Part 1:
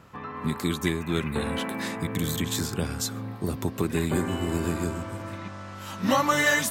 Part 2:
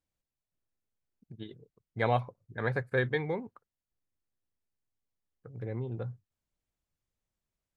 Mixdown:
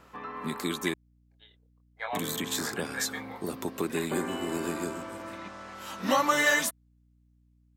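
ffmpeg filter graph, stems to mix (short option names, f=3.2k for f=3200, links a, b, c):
-filter_complex "[0:a]highpass=260,volume=-1.5dB,asplit=3[a][b][c];[a]atrim=end=0.94,asetpts=PTS-STARTPTS,afade=t=out:st=0.936:d=0.004:c=hsin[d];[b]atrim=start=0.94:end=2.13,asetpts=PTS-STARTPTS,volume=0[e];[c]atrim=start=2.13,asetpts=PTS-STARTPTS,afade=t=in:d=0.004:c=hsin[f];[d][e][f]concat=n=3:v=0:a=1[g];[1:a]highpass=f=730:w=0.5412,highpass=f=730:w=1.3066,flanger=delay=19.5:depth=7.3:speed=0.95,aeval=exprs='val(0)+0.000708*(sin(2*PI*60*n/s)+sin(2*PI*2*60*n/s)/2+sin(2*PI*3*60*n/s)/3+sin(2*PI*4*60*n/s)/4+sin(2*PI*5*60*n/s)/5)':c=same,volume=0.5dB[h];[g][h]amix=inputs=2:normalize=0"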